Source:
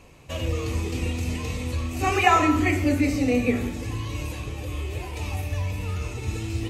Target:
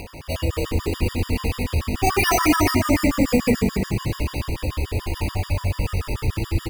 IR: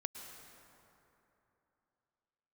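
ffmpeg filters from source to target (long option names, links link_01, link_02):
-filter_complex "[0:a]lowpass=frequency=8800:width=0.5412,lowpass=frequency=8800:width=1.3066,asplit=2[link_01][link_02];[link_02]acompressor=mode=upward:threshold=-24dB:ratio=2.5,volume=0.5dB[link_03];[link_01][link_03]amix=inputs=2:normalize=0,acrusher=samples=6:mix=1:aa=0.000001,asoftclip=type=tanh:threshold=-9dB,asplit=2[link_04][link_05];[link_05]asplit=6[link_06][link_07][link_08][link_09][link_10][link_11];[link_06]adelay=267,afreqshift=-50,volume=-4.5dB[link_12];[link_07]adelay=534,afreqshift=-100,volume=-10.9dB[link_13];[link_08]adelay=801,afreqshift=-150,volume=-17.3dB[link_14];[link_09]adelay=1068,afreqshift=-200,volume=-23.6dB[link_15];[link_10]adelay=1335,afreqshift=-250,volume=-30dB[link_16];[link_11]adelay=1602,afreqshift=-300,volume=-36.4dB[link_17];[link_12][link_13][link_14][link_15][link_16][link_17]amix=inputs=6:normalize=0[link_18];[link_04][link_18]amix=inputs=2:normalize=0,afftfilt=real='re*gt(sin(2*PI*6.9*pts/sr)*(1-2*mod(floor(b*sr/1024/950),2)),0)':imag='im*gt(sin(2*PI*6.9*pts/sr)*(1-2*mod(floor(b*sr/1024/950),2)),0)':win_size=1024:overlap=0.75"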